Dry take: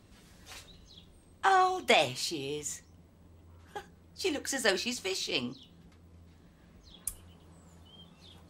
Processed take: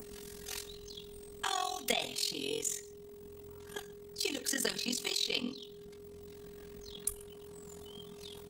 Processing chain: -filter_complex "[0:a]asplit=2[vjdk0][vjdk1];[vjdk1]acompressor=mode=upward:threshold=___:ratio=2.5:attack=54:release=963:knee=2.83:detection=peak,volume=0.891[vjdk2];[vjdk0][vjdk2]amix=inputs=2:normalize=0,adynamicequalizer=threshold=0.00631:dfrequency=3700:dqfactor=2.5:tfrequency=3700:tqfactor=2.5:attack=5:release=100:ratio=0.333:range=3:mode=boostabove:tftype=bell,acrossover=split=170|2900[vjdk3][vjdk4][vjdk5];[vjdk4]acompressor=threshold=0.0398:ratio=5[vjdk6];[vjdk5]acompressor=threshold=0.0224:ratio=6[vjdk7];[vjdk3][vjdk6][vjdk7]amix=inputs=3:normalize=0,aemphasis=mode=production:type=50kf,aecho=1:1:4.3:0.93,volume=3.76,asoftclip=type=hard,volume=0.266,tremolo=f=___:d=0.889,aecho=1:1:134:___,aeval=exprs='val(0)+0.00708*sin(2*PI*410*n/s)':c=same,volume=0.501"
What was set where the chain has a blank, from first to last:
0.0126, 43, 0.0794